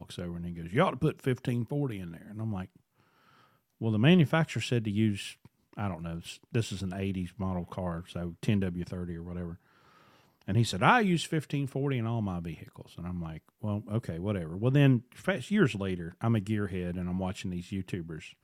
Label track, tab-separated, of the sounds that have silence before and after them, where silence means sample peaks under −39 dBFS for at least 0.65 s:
3.810000	9.540000	sound